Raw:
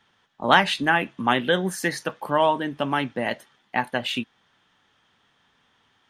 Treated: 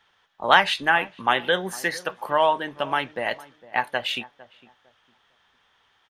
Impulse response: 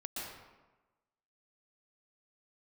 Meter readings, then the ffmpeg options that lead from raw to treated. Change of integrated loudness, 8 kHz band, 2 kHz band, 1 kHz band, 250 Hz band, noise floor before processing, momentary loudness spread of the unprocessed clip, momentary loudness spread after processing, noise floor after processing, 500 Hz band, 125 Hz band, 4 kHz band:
0.0 dB, −1.5 dB, +1.0 dB, +1.0 dB, −8.0 dB, −66 dBFS, 12 LU, 13 LU, −65 dBFS, −0.5 dB, −8.0 dB, +1.0 dB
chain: -filter_complex "[0:a]equalizer=frequency=125:width_type=o:width=1:gain=-8,equalizer=frequency=250:width_type=o:width=1:gain=-11,equalizer=frequency=8000:width_type=o:width=1:gain=-4,asplit=2[link_01][link_02];[link_02]adelay=455,lowpass=frequency=970:poles=1,volume=-18dB,asplit=2[link_03][link_04];[link_04]adelay=455,lowpass=frequency=970:poles=1,volume=0.29,asplit=2[link_05][link_06];[link_06]adelay=455,lowpass=frequency=970:poles=1,volume=0.29[link_07];[link_03][link_05][link_07]amix=inputs=3:normalize=0[link_08];[link_01][link_08]amix=inputs=2:normalize=0,volume=1.5dB"

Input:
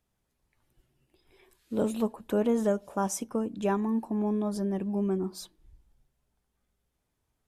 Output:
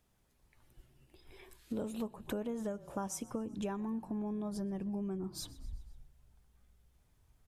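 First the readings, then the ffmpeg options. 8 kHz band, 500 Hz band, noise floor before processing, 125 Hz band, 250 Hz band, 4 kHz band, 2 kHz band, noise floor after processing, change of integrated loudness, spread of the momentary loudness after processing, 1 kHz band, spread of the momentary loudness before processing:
−6.5 dB, −11.5 dB, −80 dBFS, −8.0 dB, −9.0 dB, −3.5 dB, −9.0 dB, −72 dBFS, −10.0 dB, 13 LU, −10.5 dB, 6 LU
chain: -filter_complex "[0:a]asubboost=boost=2.5:cutoff=160,asplit=5[link_01][link_02][link_03][link_04][link_05];[link_02]adelay=127,afreqshift=-36,volume=-24dB[link_06];[link_03]adelay=254,afreqshift=-72,volume=-29.2dB[link_07];[link_04]adelay=381,afreqshift=-108,volume=-34.4dB[link_08];[link_05]adelay=508,afreqshift=-144,volume=-39.6dB[link_09];[link_01][link_06][link_07][link_08][link_09]amix=inputs=5:normalize=0,acompressor=threshold=-41dB:ratio=6,volume=4.5dB"

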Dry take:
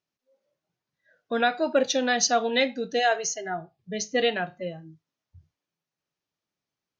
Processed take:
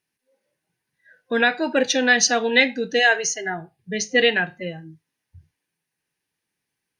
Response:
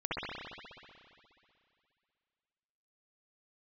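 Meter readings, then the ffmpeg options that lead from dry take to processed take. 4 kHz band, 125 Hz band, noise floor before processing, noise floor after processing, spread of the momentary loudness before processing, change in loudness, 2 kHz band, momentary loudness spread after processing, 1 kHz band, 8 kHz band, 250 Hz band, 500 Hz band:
+6.0 dB, +5.0 dB, below −85 dBFS, −82 dBFS, 14 LU, +6.0 dB, +10.5 dB, 14 LU, +0.5 dB, +5.0 dB, +5.0 dB, +3.0 dB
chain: -af "superequalizer=8b=0.501:10b=0.631:11b=2:12b=1.58:16b=3.55,volume=5dB"

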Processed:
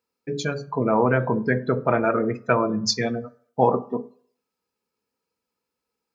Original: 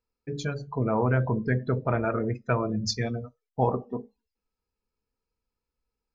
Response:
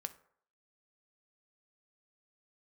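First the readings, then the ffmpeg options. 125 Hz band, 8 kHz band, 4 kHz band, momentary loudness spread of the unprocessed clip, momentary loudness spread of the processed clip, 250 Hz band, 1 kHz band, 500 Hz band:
−1.5 dB, can't be measured, +6.5 dB, 12 LU, 11 LU, +5.0 dB, +7.0 dB, +6.5 dB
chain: -filter_complex "[0:a]highpass=190,asplit=2[link_01][link_02];[1:a]atrim=start_sample=2205[link_03];[link_02][link_03]afir=irnorm=-1:irlink=0,volume=4dB[link_04];[link_01][link_04]amix=inputs=2:normalize=0"

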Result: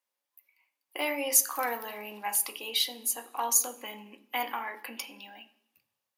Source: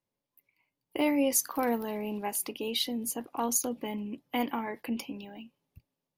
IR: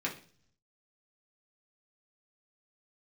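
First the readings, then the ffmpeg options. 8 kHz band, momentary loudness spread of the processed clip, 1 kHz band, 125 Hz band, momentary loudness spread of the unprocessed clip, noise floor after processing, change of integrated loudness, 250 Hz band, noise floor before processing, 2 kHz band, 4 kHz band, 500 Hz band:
+5.0 dB, 19 LU, +1.0 dB, below −10 dB, 12 LU, below −85 dBFS, +2.5 dB, −13.5 dB, below −85 dBFS, +4.0 dB, +3.0 dB, −5.0 dB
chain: -filter_complex "[0:a]highpass=760,asplit=2[link_01][link_02];[1:a]atrim=start_sample=2205,asetrate=31311,aresample=44100,highshelf=frequency=5500:gain=8.5[link_03];[link_02][link_03]afir=irnorm=-1:irlink=0,volume=-8.5dB[link_04];[link_01][link_04]amix=inputs=2:normalize=0"

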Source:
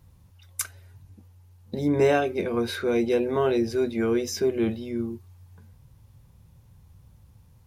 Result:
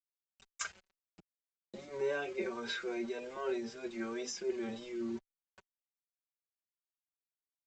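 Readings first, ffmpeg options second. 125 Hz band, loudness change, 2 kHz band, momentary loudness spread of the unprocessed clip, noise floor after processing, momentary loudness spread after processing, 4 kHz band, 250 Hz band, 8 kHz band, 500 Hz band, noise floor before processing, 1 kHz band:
−25.0 dB, −13.5 dB, −8.0 dB, 13 LU, below −85 dBFS, 6 LU, −8.0 dB, −14.5 dB, −9.5 dB, −14.0 dB, −56 dBFS, −13.5 dB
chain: -filter_complex "[0:a]areverse,acompressor=threshold=-34dB:ratio=16,areverse,acrossover=split=240 2100:gain=0.251 1 0.158[link_01][link_02][link_03];[link_01][link_02][link_03]amix=inputs=3:normalize=0,crystalizer=i=8:c=0,bandreject=frequency=60:width_type=h:width=6,bandreject=frequency=120:width_type=h:width=6,bandreject=frequency=180:width_type=h:width=6,bandreject=frequency=240:width_type=h:width=6,bandreject=frequency=300:width_type=h:width=6,aresample=16000,aeval=exprs='val(0)*gte(abs(val(0)),0.00316)':channel_layout=same,aresample=44100,anlmdn=0.00001,aecho=1:1:5.2:0.48,asplit=2[link_04][link_05];[link_05]adelay=4.6,afreqshift=1.9[link_06];[link_04][link_06]amix=inputs=2:normalize=1,volume=2dB"

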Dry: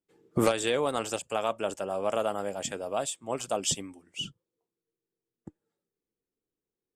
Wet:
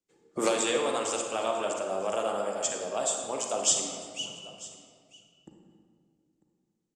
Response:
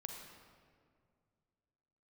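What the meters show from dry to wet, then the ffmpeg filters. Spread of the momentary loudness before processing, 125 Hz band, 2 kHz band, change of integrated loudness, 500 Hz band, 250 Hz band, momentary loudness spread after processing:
10 LU, −10.5 dB, +0.5 dB, +1.5 dB, 0.0 dB, −2.5 dB, 13 LU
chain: -filter_complex "[0:a]bandreject=frequency=59.55:width_type=h:width=4,bandreject=frequency=119.1:width_type=h:width=4,bandreject=frequency=178.65:width_type=h:width=4,bandreject=frequency=238.2:width_type=h:width=4,bandreject=frequency=297.75:width_type=h:width=4,bandreject=frequency=357.3:width_type=h:width=4,bandreject=frequency=416.85:width_type=h:width=4,bandreject=frequency=476.4:width_type=h:width=4,bandreject=frequency=535.95:width_type=h:width=4,bandreject=frequency=595.5:width_type=h:width=4,bandreject=frequency=655.05:width_type=h:width=4,bandreject=frequency=714.6:width_type=h:width=4,bandreject=frequency=774.15:width_type=h:width=4,bandreject=frequency=833.7:width_type=h:width=4,bandreject=frequency=893.25:width_type=h:width=4,bandreject=frequency=952.8:width_type=h:width=4,bandreject=frequency=1012.35:width_type=h:width=4,bandreject=frequency=1071.9:width_type=h:width=4,bandreject=frequency=1131.45:width_type=h:width=4,bandreject=frequency=1191:width_type=h:width=4,bandreject=frequency=1250.55:width_type=h:width=4,bandreject=frequency=1310.1:width_type=h:width=4,bandreject=frequency=1369.65:width_type=h:width=4,bandreject=frequency=1429.2:width_type=h:width=4,bandreject=frequency=1488.75:width_type=h:width=4,bandreject=frequency=1548.3:width_type=h:width=4,bandreject=frequency=1607.85:width_type=h:width=4,bandreject=frequency=1667.4:width_type=h:width=4,acrossover=split=240|1100[link_01][link_02][link_03];[link_01]acompressor=threshold=-56dB:ratio=5[link_04];[link_04][link_02][link_03]amix=inputs=3:normalize=0,lowpass=frequency=7300:width_type=q:width=2.5,aecho=1:1:946:0.106[link_05];[1:a]atrim=start_sample=2205[link_06];[link_05][link_06]afir=irnorm=-1:irlink=0,volume=3dB"

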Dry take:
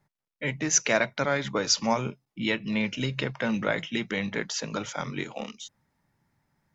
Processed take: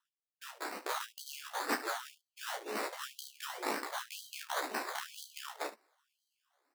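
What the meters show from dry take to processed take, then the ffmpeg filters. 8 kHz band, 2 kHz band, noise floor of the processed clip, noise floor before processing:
can't be measured, −10.5 dB, below −85 dBFS, −85 dBFS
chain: -af "acompressor=threshold=-35dB:ratio=6,aemphasis=mode=production:type=bsi,dynaudnorm=framelen=230:gausssize=5:maxgain=8.5dB,aresample=11025,aeval=exprs='abs(val(0))':channel_layout=same,aresample=44100,acrusher=samples=19:mix=1:aa=0.000001:lfo=1:lforange=11.4:lforate=1,aecho=1:1:14|30|74:0.668|0.398|0.224,afftfilt=real='re*gte(b*sr/1024,210*pow(3100/210,0.5+0.5*sin(2*PI*1*pts/sr)))':imag='im*gte(b*sr/1024,210*pow(3100/210,0.5+0.5*sin(2*PI*1*pts/sr)))':win_size=1024:overlap=0.75,volume=-2.5dB"

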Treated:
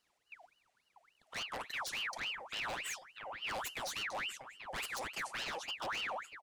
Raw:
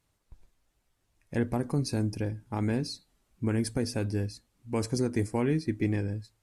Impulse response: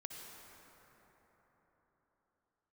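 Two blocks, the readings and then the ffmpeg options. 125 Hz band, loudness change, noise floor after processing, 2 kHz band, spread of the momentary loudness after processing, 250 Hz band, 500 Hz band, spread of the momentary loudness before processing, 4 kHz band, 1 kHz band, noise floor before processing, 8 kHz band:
−30.5 dB, −8.5 dB, −79 dBFS, +4.0 dB, 9 LU, −28.0 dB, −14.5 dB, 7 LU, +3.5 dB, +0.5 dB, −76 dBFS, −2.5 dB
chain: -filter_complex "[0:a]firequalizer=gain_entry='entry(100,0);entry(250,-21);entry(1200,9);entry(1800,5);entry(7900,2);entry(11000,-4)':delay=0.05:min_phase=1,asplit=2[link_01][link_02];[link_02]adelay=640,lowpass=frequency=920:poles=1,volume=-10dB,asplit=2[link_03][link_04];[link_04]adelay=640,lowpass=frequency=920:poles=1,volume=0.36,asplit=2[link_05][link_06];[link_06]adelay=640,lowpass=frequency=920:poles=1,volume=0.36,asplit=2[link_07][link_08];[link_08]adelay=640,lowpass=frequency=920:poles=1,volume=0.36[link_09];[link_03][link_05][link_07][link_09]amix=inputs=4:normalize=0[link_10];[link_01][link_10]amix=inputs=2:normalize=0,aeval=exprs='0.0316*(abs(mod(val(0)/0.0316+3,4)-2)-1)':channel_layout=same,aeval=exprs='val(0)*sin(2*PI*1800*n/s+1800*0.65/3.5*sin(2*PI*3.5*n/s))':channel_layout=same,volume=-2dB"

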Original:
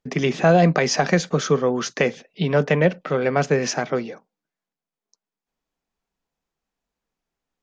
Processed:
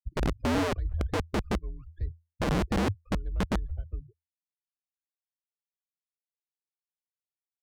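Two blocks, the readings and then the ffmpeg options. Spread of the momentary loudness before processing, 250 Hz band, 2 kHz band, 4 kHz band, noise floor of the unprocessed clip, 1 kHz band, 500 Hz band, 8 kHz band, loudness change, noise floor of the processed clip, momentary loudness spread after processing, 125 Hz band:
8 LU, −8.5 dB, −13.5 dB, −11.0 dB, below −85 dBFS, −11.5 dB, −15.5 dB, can't be measured, −11.0 dB, below −85 dBFS, 11 LU, −9.0 dB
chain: -filter_complex "[0:a]afftfilt=real='re*gte(hypot(re,im),0.178)':imag='im*gte(hypot(re,im),0.178)':win_size=1024:overlap=0.75,acrossover=split=290|1700[link_01][link_02][link_03];[link_03]aeval=exprs='abs(val(0))':channel_layout=same[link_04];[link_01][link_02][link_04]amix=inputs=3:normalize=0,alimiter=limit=-14dB:level=0:latency=1:release=275,acrossover=split=5500[link_05][link_06];[link_06]acompressor=threshold=-49dB:ratio=4:attack=1:release=60[link_07];[link_05][link_07]amix=inputs=2:normalize=0,equalizer=frequency=81:width_type=o:width=1.6:gain=11,afreqshift=-83,firequalizer=gain_entry='entry(110,0);entry(160,-27);entry(940,-28);entry(1900,-18)':delay=0.05:min_phase=1,aeval=exprs='(mod(12.6*val(0)+1,2)-1)/12.6':channel_layout=same,adynamicsmooth=sensitivity=2:basefreq=2600"

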